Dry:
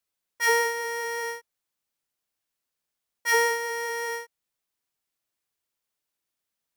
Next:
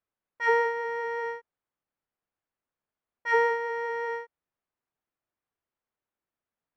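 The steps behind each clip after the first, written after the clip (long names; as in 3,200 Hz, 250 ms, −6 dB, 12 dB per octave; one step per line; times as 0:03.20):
low-pass filter 1,600 Hz 12 dB per octave
level +1 dB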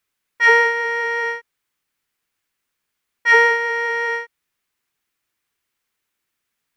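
drawn EQ curve 420 Hz 0 dB, 630 Hz −5 dB, 2,200 Hz +10 dB
level +7 dB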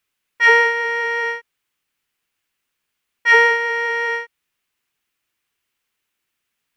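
parametric band 2,800 Hz +4.5 dB 0.5 octaves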